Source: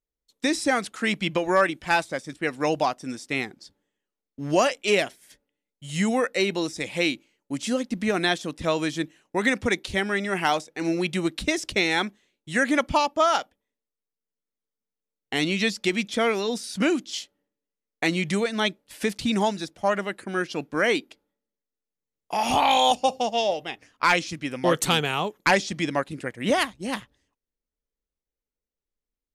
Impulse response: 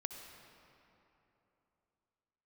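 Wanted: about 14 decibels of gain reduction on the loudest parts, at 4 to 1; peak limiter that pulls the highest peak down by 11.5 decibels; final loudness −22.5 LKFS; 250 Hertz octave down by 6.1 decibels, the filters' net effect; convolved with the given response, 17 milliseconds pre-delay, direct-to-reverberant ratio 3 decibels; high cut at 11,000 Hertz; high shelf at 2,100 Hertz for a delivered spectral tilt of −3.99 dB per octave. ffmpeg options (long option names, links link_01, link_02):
-filter_complex "[0:a]lowpass=11000,equalizer=frequency=250:width_type=o:gain=-8.5,highshelf=frequency=2100:gain=-5,acompressor=threshold=-35dB:ratio=4,alimiter=level_in=5dB:limit=-24dB:level=0:latency=1,volume=-5dB,asplit=2[link_01][link_02];[1:a]atrim=start_sample=2205,adelay=17[link_03];[link_02][link_03]afir=irnorm=-1:irlink=0,volume=-1.5dB[link_04];[link_01][link_04]amix=inputs=2:normalize=0,volume=16dB"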